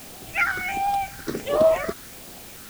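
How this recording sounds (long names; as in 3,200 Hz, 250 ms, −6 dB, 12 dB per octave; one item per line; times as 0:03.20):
phaser sweep stages 6, 1.4 Hz, lowest notch 720–1,900 Hz
a quantiser's noise floor 8 bits, dither triangular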